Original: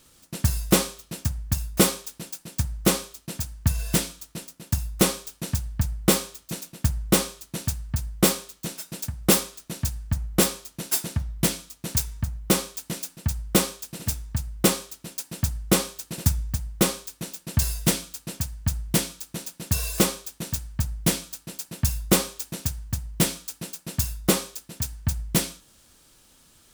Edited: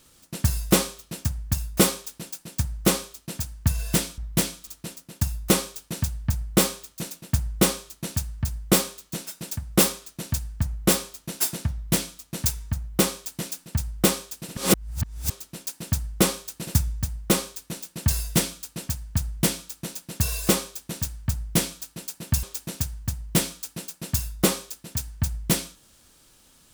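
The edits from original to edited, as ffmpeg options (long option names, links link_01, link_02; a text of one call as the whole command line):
ffmpeg -i in.wav -filter_complex "[0:a]asplit=6[link_01][link_02][link_03][link_04][link_05][link_06];[link_01]atrim=end=4.182[link_07];[link_02]atrim=start=11.238:end=11.732[link_08];[link_03]atrim=start=4.178:end=14.082[link_09];[link_04]atrim=start=14.078:end=14.812,asetpts=PTS-STARTPTS,areverse[link_10];[link_05]atrim=start=14.808:end=21.942[link_11];[link_06]atrim=start=22.278[link_12];[link_07][link_08]acrossfade=duration=0.004:curve1=hsin:curve2=hsin[link_13];[link_13][link_09]acrossfade=duration=0.004:curve1=hsin:curve2=hsin[link_14];[link_14][link_10]acrossfade=duration=0.004:curve1=hsin:curve2=hsin[link_15];[link_15][link_11]acrossfade=duration=0.004:curve1=hsin:curve2=hsin[link_16];[link_16][link_12]acrossfade=duration=0.004:curve1=hsin:curve2=hsin" out.wav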